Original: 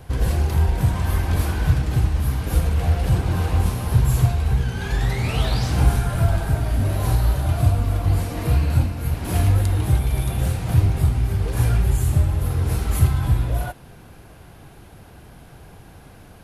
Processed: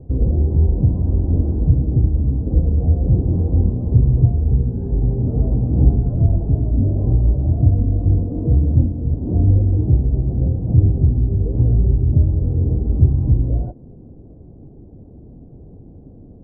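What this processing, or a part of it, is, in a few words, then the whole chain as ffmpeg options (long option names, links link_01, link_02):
under water: -af "lowpass=frequency=500:width=0.5412,lowpass=frequency=500:width=1.3066,equalizer=frequency=260:width_type=o:width=0.53:gain=6,volume=3.5dB"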